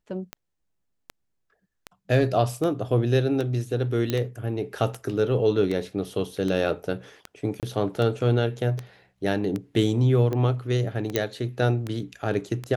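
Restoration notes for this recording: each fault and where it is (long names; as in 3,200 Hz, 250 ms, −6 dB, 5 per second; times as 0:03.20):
scratch tick 78 rpm −17 dBFS
0:04.10: click −11 dBFS
0:07.60–0:07.63: drop-out 28 ms
0:11.16: click −7 dBFS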